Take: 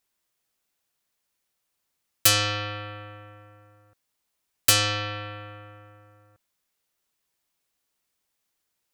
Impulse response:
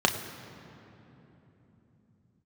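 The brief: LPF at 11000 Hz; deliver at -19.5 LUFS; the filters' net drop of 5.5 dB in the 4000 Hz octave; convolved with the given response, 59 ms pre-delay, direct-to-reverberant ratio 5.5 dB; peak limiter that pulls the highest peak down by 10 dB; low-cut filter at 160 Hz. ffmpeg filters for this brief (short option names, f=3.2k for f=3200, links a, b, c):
-filter_complex "[0:a]highpass=160,lowpass=11k,equalizer=f=4k:t=o:g=-7.5,alimiter=limit=-19.5dB:level=0:latency=1,asplit=2[a][b];[1:a]atrim=start_sample=2205,adelay=59[c];[b][c]afir=irnorm=-1:irlink=0,volume=-19.5dB[d];[a][d]amix=inputs=2:normalize=0,volume=13dB"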